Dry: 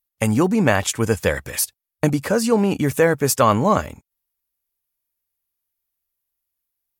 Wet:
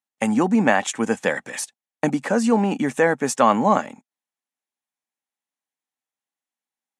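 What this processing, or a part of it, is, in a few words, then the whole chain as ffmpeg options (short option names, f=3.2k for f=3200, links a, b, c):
television speaker: -af "highpass=f=180:w=0.5412,highpass=f=180:w=1.3066,equalizer=f=240:t=q:w=4:g=6,equalizer=f=400:t=q:w=4:g=-3,equalizer=f=800:t=q:w=4:g=8,equalizer=f=1.8k:t=q:w=4:g=4,equalizer=f=4.8k:t=q:w=4:g=-7,lowpass=f=8.6k:w=0.5412,lowpass=f=8.6k:w=1.3066,volume=-2.5dB"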